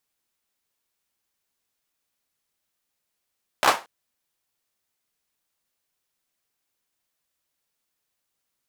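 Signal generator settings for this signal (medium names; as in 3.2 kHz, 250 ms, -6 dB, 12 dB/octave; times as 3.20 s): hand clap length 0.23 s, apart 15 ms, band 890 Hz, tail 0.27 s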